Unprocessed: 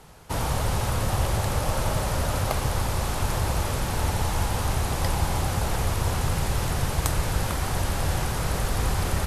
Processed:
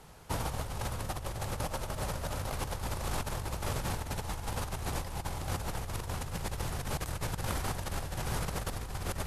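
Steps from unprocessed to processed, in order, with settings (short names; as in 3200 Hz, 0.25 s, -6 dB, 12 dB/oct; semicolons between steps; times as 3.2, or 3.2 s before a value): negative-ratio compressor -27 dBFS, ratio -0.5; gain -7.5 dB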